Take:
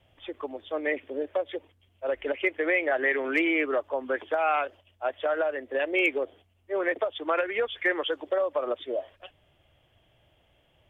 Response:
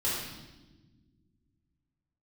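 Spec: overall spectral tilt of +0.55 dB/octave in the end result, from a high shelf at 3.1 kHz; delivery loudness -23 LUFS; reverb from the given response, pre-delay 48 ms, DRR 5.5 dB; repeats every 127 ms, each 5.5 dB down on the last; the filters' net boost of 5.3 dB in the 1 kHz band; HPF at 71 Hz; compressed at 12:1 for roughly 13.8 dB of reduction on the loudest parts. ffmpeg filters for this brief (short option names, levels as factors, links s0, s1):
-filter_complex "[0:a]highpass=71,equalizer=f=1000:t=o:g=6.5,highshelf=f=3100:g=9,acompressor=threshold=0.0282:ratio=12,aecho=1:1:127|254|381|508|635|762|889:0.531|0.281|0.149|0.079|0.0419|0.0222|0.0118,asplit=2[s0][s1];[1:a]atrim=start_sample=2205,adelay=48[s2];[s1][s2]afir=irnorm=-1:irlink=0,volume=0.224[s3];[s0][s3]amix=inputs=2:normalize=0,volume=3.35"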